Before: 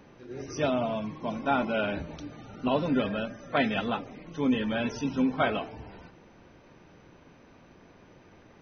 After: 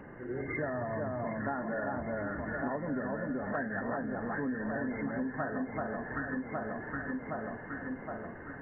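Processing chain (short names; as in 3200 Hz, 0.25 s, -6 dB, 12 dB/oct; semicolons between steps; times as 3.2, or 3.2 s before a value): nonlinear frequency compression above 1500 Hz 4:1; 0.66–1.17 fifteen-band EQ 100 Hz +11 dB, 250 Hz -4 dB, 1600 Hz +4 dB; echo with dull and thin repeats by turns 0.383 s, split 1400 Hz, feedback 73%, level -3 dB; compressor 6:1, threshold -38 dBFS, peak gain reduction 17 dB; gain +5 dB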